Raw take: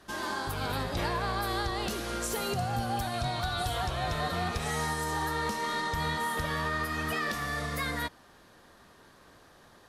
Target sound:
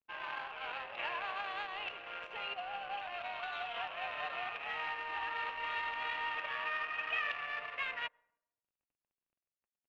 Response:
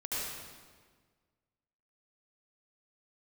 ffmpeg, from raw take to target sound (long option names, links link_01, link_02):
-filter_complex "[0:a]highpass=frequency=590:width=0.5412,highpass=frequency=590:width=1.3066,aeval=exprs='sgn(val(0))*max(abs(val(0))-0.00282,0)':channel_layout=same,asplit=2[link_01][link_02];[1:a]atrim=start_sample=2205,asetrate=88200,aresample=44100,adelay=63[link_03];[link_02][link_03]afir=irnorm=-1:irlink=0,volume=-21.5dB[link_04];[link_01][link_04]amix=inputs=2:normalize=0,adynamicsmooth=sensitivity=5.5:basefreq=850,lowpass=frequency=2700:width_type=q:width=7.7,volume=-7dB"